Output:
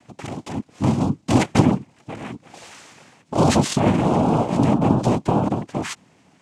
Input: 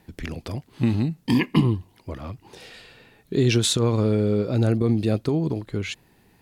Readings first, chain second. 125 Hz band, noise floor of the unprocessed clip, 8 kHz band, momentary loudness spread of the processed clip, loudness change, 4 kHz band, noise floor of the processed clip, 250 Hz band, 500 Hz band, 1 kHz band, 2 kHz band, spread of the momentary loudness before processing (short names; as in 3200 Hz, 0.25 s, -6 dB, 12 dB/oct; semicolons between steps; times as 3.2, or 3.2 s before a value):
+1.0 dB, -60 dBFS, +0.5 dB, 17 LU, +3.0 dB, -2.5 dB, -58 dBFS, +3.5 dB, +2.0 dB, +14.0 dB, +2.0 dB, 16 LU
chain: switching dead time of 0.074 ms; noise vocoder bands 4; gain +3.5 dB